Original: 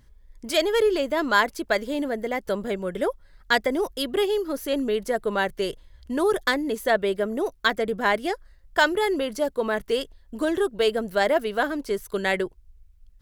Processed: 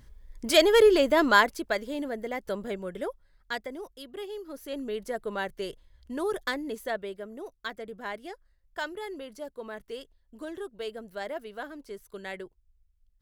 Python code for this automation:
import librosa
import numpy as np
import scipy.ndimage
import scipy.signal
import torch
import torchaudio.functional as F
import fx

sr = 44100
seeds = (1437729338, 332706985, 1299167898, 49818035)

y = fx.gain(x, sr, db=fx.line((1.22, 2.5), (1.76, -6.0), (2.75, -6.0), (4.05, -17.0), (5.0, -8.0), (6.74, -8.0), (7.19, -14.5)))